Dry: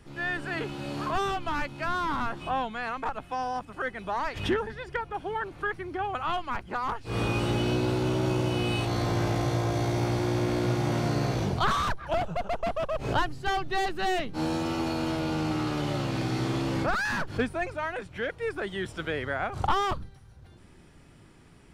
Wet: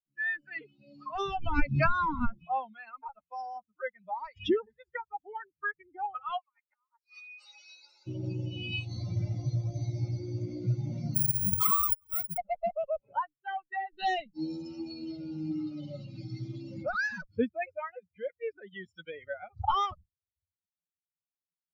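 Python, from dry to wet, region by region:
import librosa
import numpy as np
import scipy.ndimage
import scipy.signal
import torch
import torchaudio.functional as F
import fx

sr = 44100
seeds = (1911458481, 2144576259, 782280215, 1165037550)

y = fx.chain(x, sr, fx.low_shelf(hz=250.0, db=9.5),
    fx.pre_swell(db_per_s=38.0), at=(1.19, 2.46))
y = fx.chain(y, sr, fx.highpass(hz=970.0, slope=12),
    fx.peak_eq(hz=3100.0, db=-13.5, octaves=0.24),
    fx.over_compress(threshold_db=-38.0, ratio=-0.5), at=(6.38, 8.07))
y = fx.chain(y, sr, fx.lower_of_two(delay_ms=0.89),
    fx.lowpass(hz=3600.0, slope=6),
    fx.resample_bad(factor=4, down='filtered', up='zero_stuff'), at=(11.15, 12.38))
y = fx.chain(y, sr, fx.lowpass(hz=2000.0, slope=12),
    fx.low_shelf(hz=330.0, db=-10.5), at=(13.0, 13.93))
y = fx.bin_expand(y, sr, power=3.0)
y = fx.peak_eq(y, sr, hz=9200.0, db=-13.0, octaves=1.0)
y = y * 10.0 ** (4.0 / 20.0)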